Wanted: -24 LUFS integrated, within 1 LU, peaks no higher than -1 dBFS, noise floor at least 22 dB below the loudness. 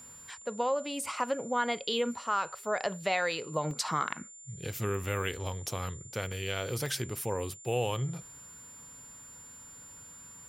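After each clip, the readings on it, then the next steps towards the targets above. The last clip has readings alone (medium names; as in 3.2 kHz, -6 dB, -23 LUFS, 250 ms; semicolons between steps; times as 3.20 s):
dropouts 4; longest dropout 1.3 ms; steady tone 7.2 kHz; tone level -48 dBFS; loudness -33.0 LUFS; peak level -13.5 dBFS; loudness target -24.0 LUFS
-> interpolate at 3.71/5.04/6.32/6.86 s, 1.3 ms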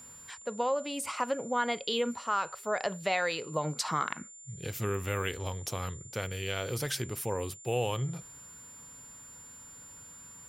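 dropouts 0; steady tone 7.2 kHz; tone level -48 dBFS
-> band-stop 7.2 kHz, Q 30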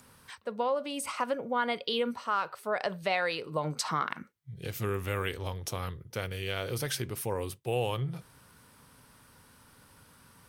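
steady tone not found; loudness -33.0 LUFS; peak level -14.0 dBFS; loudness target -24.0 LUFS
-> trim +9 dB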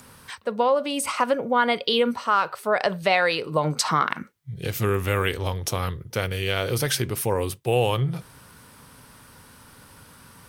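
loudness -24.0 LUFS; peak level -5.0 dBFS; noise floor -50 dBFS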